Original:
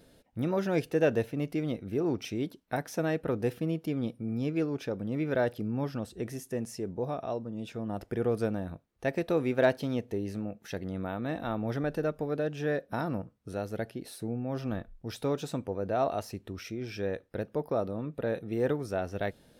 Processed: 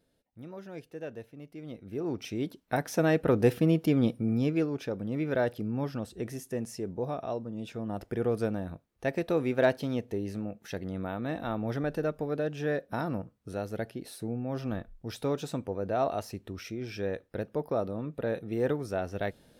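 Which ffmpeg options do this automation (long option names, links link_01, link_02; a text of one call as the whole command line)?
ffmpeg -i in.wav -af "volume=7dB,afade=type=in:start_time=1.53:duration=0.64:silence=0.251189,afade=type=in:start_time=2.17:duration=1.35:silence=0.334965,afade=type=out:start_time=4.12:duration=0.58:silence=0.446684" out.wav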